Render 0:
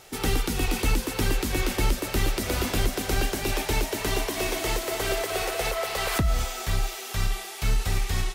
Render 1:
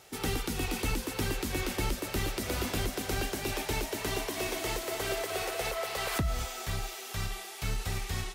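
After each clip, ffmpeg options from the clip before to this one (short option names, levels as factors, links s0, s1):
-af "highpass=47,volume=0.531"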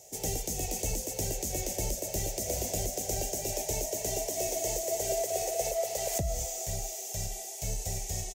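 -af "firequalizer=gain_entry='entry(170,0);entry(250,-7);entry(630,10);entry(1200,-26);entry(1900,-8);entry(4000,-6);entry(6500,14);entry(9900,3);entry(15000,8)':delay=0.05:min_phase=1,volume=0.794"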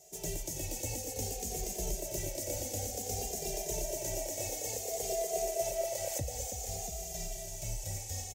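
-filter_complex "[0:a]aecho=1:1:327|686:0.355|0.355,asplit=2[s0][s1];[s1]adelay=2.5,afreqshift=-0.56[s2];[s0][s2]amix=inputs=2:normalize=1,volume=0.794"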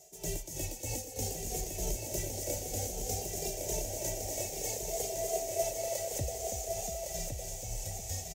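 -af "tremolo=f=3.2:d=0.62,aecho=1:1:1110:0.531,volume=1.26"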